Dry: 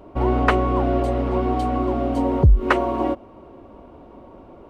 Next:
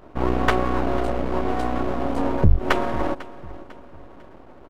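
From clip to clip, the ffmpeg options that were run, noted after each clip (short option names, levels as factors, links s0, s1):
-af "aeval=exprs='max(val(0),0)':c=same,aecho=1:1:498|996|1494:0.126|0.0504|0.0201,volume=1.19"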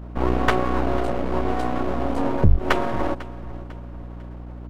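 -af "aeval=exprs='val(0)+0.0178*(sin(2*PI*60*n/s)+sin(2*PI*2*60*n/s)/2+sin(2*PI*3*60*n/s)/3+sin(2*PI*4*60*n/s)/4+sin(2*PI*5*60*n/s)/5)':c=same"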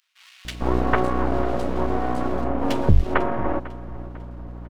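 -filter_complex "[0:a]acrossover=split=2600[s0][s1];[s0]adelay=450[s2];[s2][s1]amix=inputs=2:normalize=0"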